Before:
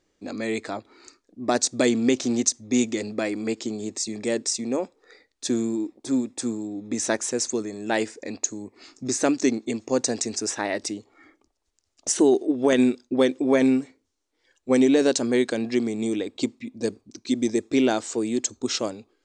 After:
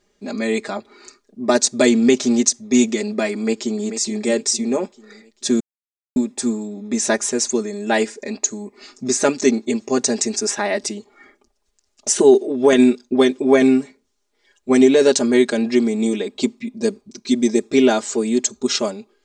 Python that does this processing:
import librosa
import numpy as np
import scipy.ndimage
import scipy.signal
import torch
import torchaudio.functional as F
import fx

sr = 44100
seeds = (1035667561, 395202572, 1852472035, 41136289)

y = fx.echo_throw(x, sr, start_s=3.33, length_s=0.57, ms=440, feedback_pct=45, wet_db=-10.5)
y = fx.edit(y, sr, fx.silence(start_s=5.6, length_s=0.56), tone=tone)
y = y + 0.9 * np.pad(y, (int(4.9 * sr / 1000.0), 0))[:len(y)]
y = F.gain(torch.from_numpy(y), 3.5).numpy()